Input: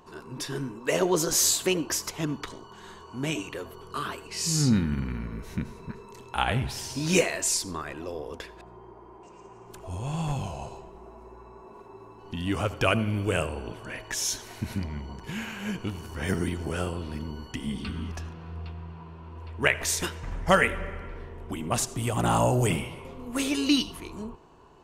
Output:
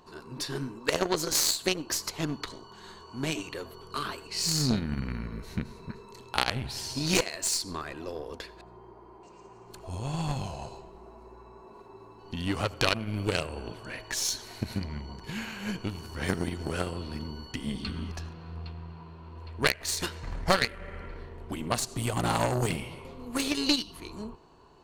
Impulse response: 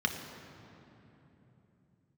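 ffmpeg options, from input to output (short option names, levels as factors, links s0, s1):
-af "aeval=exprs='0.501*(cos(1*acos(clip(val(0)/0.501,-1,1)))-cos(1*PI/2))+0.178*(cos(6*acos(clip(val(0)/0.501,-1,1)))-cos(6*PI/2))+0.0501*(cos(7*acos(clip(val(0)/0.501,-1,1)))-cos(7*PI/2))+0.112*(cos(8*acos(clip(val(0)/0.501,-1,1)))-cos(8*PI/2))':c=same,equalizer=f=4300:w=6.5:g=11.5,acompressor=threshold=0.02:ratio=2.5,volume=2.51"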